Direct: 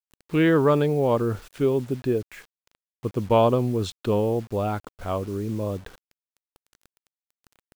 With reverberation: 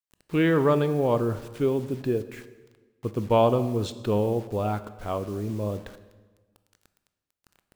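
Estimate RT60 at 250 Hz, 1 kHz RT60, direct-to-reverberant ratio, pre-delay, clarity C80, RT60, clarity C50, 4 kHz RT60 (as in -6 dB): 1.5 s, 1.3 s, 11.5 dB, 17 ms, 15.0 dB, 1.4 s, 13.5 dB, 1.1 s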